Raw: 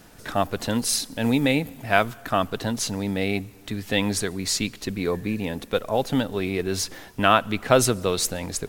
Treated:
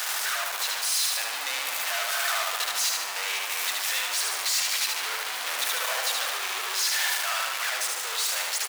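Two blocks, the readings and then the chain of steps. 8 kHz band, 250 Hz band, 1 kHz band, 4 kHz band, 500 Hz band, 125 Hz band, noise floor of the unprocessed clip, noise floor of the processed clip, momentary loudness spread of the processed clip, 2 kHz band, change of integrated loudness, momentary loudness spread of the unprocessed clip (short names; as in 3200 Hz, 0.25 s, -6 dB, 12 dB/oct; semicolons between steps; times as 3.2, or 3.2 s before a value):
+3.0 dB, under -30 dB, -5.0 dB, +4.0 dB, -16.0 dB, under -40 dB, -48 dBFS, -32 dBFS, 4 LU, +1.5 dB, -1.0 dB, 9 LU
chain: infinite clipping; Bessel high-pass 1200 Hz, order 4; high shelf 10000 Hz -4.5 dB; vocal rider 2 s; feedback echo 75 ms, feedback 54%, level -3 dB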